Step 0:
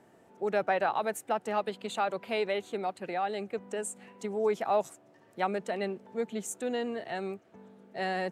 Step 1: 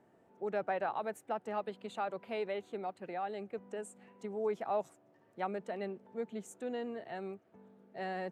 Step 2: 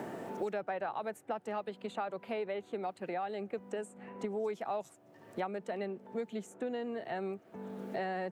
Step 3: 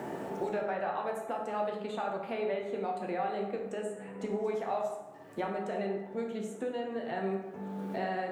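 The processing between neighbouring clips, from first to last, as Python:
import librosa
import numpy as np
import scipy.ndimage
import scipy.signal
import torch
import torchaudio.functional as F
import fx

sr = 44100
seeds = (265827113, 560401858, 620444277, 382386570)

y1 = fx.high_shelf(x, sr, hz=2800.0, db=-9.5)
y1 = F.gain(torch.from_numpy(y1), -6.0).numpy()
y2 = fx.band_squash(y1, sr, depth_pct=100)
y3 = fx.rev_plate(y2, sr, seeds[0], rt60_s=1.1, hf_ratio=0.55, predelay_ms=0, drr_db=-0.5)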